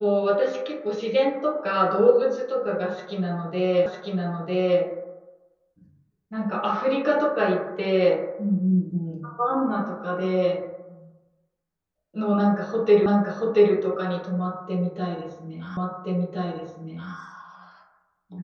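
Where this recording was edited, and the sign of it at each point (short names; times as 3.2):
3.86 repeat of the last 0.95 s
13.06 repeat of the last 0.68 s
15.77 repeat of the last 1.37 s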